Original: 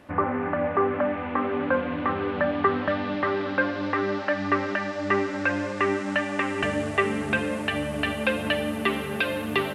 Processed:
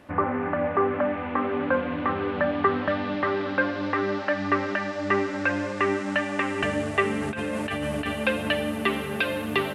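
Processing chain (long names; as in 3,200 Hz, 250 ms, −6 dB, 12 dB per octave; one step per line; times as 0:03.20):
0:07.22–0:08.06: compressor whose output falls as the input rises −29 dBFS, ratio −1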